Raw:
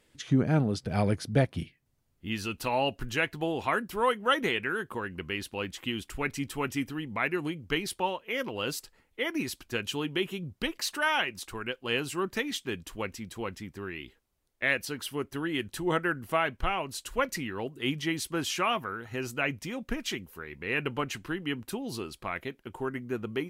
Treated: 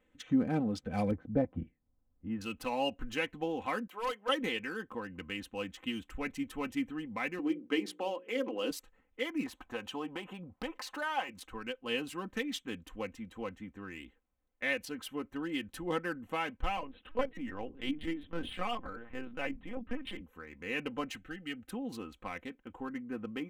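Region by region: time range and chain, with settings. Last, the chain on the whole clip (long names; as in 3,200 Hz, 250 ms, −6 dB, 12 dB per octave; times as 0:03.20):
0:01.11–0:02.41: low-pass filter 1,100 Hz + low-shelf EQ 130 Hz +5 dB
0:03.87–0:04.29: high-pass filter 550 Hz + hard clipping −26 dBFS
0:07.39–0:08.71: high-pass with resonance 310 Hz, resonance Q 2.4 + high-shelf EQ 10,000 Hz −9.5 dB + mains-hum notches 60/120/180/240/300/360/420/480/540 Hz
0:09.46–0:11.29: downward compressor 2 to 1, threshold −39 dBFS + parametric band 870 Hz +14 dB 1.6 octaves
0:16.77–0:20.21: mains-hum notches 50/100/150/200/250/300/350/400/450 Hz + dynamic equaliser 2,500 Hz, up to −6 dB, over −48 dBFS, Q 4.5 + linear-prediction vocoder at 8 kHz pitch kept
0:21.17–0:21.69: Butterworth band-reject 1,000 Hz, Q 2.4 + parametric band 330 Hz −6.5 dB 1.9 octaves
whole clip: adaptive Wiener filter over 9 samples; dynamic equaliser 1,400 Hz, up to −5 dB, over −42 dBFS, Q 2; comb filter 3.9 ms, depth 71%; level −6 dB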